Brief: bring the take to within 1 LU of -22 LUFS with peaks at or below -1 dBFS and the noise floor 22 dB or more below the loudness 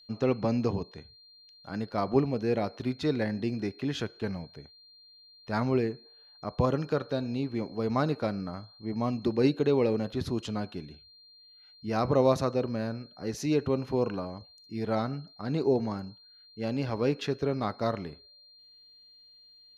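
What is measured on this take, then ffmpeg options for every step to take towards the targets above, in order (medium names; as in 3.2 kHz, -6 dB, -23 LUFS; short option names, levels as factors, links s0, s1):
steady tone 4.2 kHz; tone level -54 dBFS; loudness -30.5 LUFS; peak level -11.0 dBFS; loudness target -22.0 LUFS
-> -af "bandreject=f=4200:w=30"
-af "volume=2.66"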